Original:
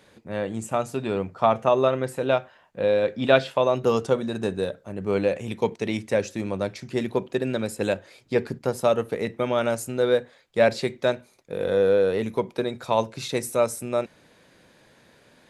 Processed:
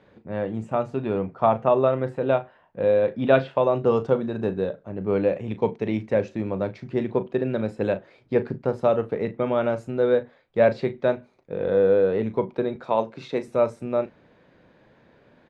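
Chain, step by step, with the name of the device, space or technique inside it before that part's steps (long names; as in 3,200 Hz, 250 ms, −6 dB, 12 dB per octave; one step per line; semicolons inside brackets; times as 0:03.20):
0:12.76–0:13.48: high-pass filter 200 Hz 12 dB per octave
phone in a pocket (low-pass filter 3,700 Hz 12 dB per octave; high-shelf EQ 2,000 Hz −11 dB)
double-tracking delay 37 ms −12.5 dB
level +1.5 dB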